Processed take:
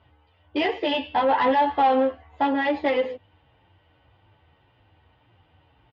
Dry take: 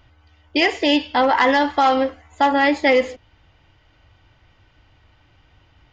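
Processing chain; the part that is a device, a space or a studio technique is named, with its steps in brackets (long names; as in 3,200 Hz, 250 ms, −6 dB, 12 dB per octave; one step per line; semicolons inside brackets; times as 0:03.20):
0:00.81–0:02.54: double-tracking delay 15 ms −8 dB
barber-pole flanger into a guitar amplifier (barber-pole flanger 10.1 ms −1.8 Hz; soft clipping −17 dBFS, distortion −12 dB; loudspeaker in its box 89–3,400 Hz, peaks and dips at 90 Hz +4 dB, 470 Hz +4 dB, 850 Hz +4 dB, 1,400 Hz −4 dB, 2,200 Hz −5 dB)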